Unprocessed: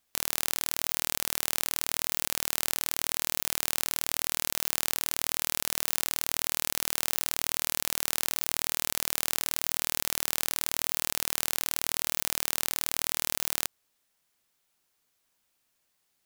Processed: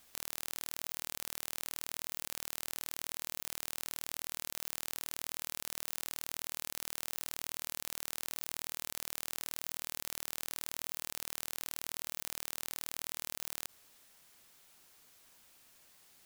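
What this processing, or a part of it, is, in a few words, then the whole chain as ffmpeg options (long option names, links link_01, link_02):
de-esser from a sidechain: -filter_complex "[0:a]asplit=2[link_01][link_02];[link_02]highpass=frequency=4500:width=0.5412,highpass=frequency=4500:width=1.3066,apad=whole_len=716815[link_03];[link_01][link_03]sidechaincompress=threshold=-51dB:ratio=8:attack=3.8:release=20,volume=12dB"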